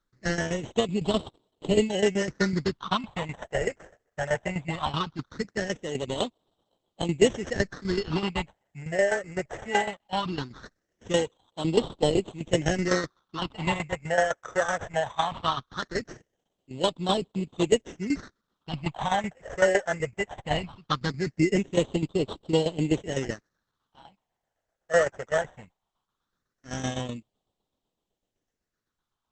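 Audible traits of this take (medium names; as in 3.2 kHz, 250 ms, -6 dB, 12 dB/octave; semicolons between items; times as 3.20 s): aliases and images of a low sample rate 2.4 kHz, jitter 0%; tremolo saw down 7.9 Hz, depth 75%; phasing stages 6, 0.19 Hz, lowest notch 270–1700 Hz; Opus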